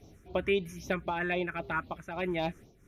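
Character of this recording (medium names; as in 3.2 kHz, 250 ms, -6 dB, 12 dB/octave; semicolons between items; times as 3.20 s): phasing stages 4, 3.8 Hz, lowest notch 700–1700 Hz; random flutter of the level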